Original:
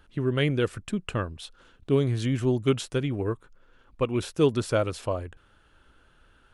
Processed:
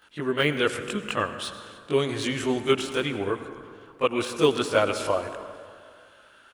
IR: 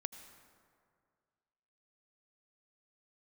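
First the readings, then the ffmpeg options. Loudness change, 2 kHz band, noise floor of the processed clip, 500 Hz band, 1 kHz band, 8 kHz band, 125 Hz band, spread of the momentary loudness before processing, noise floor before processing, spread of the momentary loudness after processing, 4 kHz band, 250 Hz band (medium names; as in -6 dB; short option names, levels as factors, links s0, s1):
+1.0 dB, +7.5 dB, -55 dBFS, +2.0 dB, +7.0 dB, +4.5 dB, -8.0 dB, 10 LU, -61 dBFS, 15 LU, +7.0 dB, -1.0 dB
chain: -filter_complex "[0:a]highpass=f=930:p=1,deesser=1,asplit=3[s0][s1][s2];[s1]adelay=295,afreqshift=-57,volume=0.075[s3];[s2]adelay=590,afreqshift=-114,volume=0.0269[s4];[s0][s3][s4]amix=inputs=3:normalize=0,asplit=2[s5][s6];[1:a]atrim=start_sample=2205,adelay=20[s7];[s6][s7]afir=irnorm=-1:irlink=0,volume=2.82[s8];[s5][s8]amix=inputs=2:normalize=0,volume=1.26"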